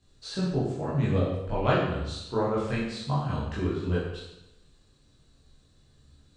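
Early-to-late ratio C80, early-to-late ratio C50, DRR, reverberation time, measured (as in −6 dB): 4.0 dB, 1.5 dB, −8.5 dB, 0.85 s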